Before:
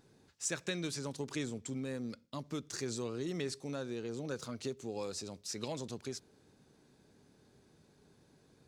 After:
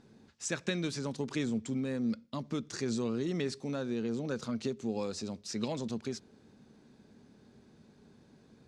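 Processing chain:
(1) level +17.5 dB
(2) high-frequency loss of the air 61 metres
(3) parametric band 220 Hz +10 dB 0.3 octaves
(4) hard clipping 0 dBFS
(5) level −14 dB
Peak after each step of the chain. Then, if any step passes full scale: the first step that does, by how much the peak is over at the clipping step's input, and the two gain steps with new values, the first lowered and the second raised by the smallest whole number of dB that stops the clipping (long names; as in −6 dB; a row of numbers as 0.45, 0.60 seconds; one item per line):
−4.0, −4.5, −4.0, −4.0, −18.0 dBFS
no step passes full scale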